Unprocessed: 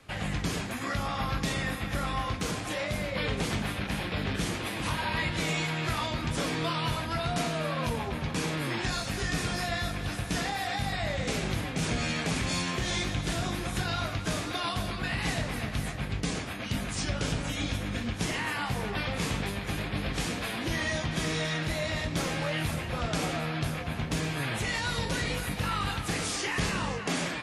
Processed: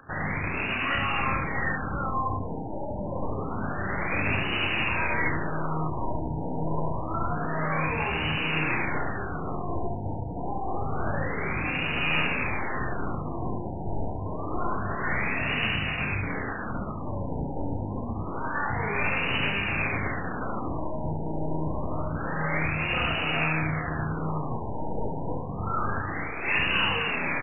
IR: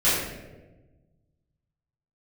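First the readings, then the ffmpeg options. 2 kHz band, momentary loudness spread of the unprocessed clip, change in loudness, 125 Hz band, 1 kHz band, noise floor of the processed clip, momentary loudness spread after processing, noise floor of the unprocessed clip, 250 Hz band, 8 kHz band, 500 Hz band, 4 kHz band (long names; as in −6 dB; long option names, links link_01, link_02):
+4.5 dB, 3 LU, +2.0 dB, +0.5 dB, +4.0 dB, −33 dBFS, 8 LU, −36 dBFS, +0.5 dB, below −40 dB, +1.5 dB, −2.0 dB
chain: -filter_complex "[0:a]acompressor=mode=upward:threshold=-53dB:ratio=2.5,aexciter=amount=2.5:drive=8.1:freq=2800,lowshelf=frequency=370:gain=-7,alimiter=limit=-20dB:level=0:latency=1:release=88,lowpass=frequency=4100:width_type=q:width=2.2,equalizer=frequency=580:width_type=o:width=0.7:gain=-6,asplit=2[link_01][link_02];[link_02]adelay=32,volume=-5.5dB[link_03];[link_01][link_03]amix=inputs=2:normalize=0,aeval=exprs='clip(val(0),-1,0.0335)':channel_layout=same,aecho=1:1:71:0.668,afftfilt=real='re*lt(b*sr/1024,960*pow(3000/960,0.5+0.5*sin(2*PI*0.27*pts/sr)))':imag='im*lt(b*sr/1024,960*pow(3000/960,0.5+0.5*sin(2*PI*0.27*pts/sr)))':win_size=1024:overlap=0.75,volume=6.5dB"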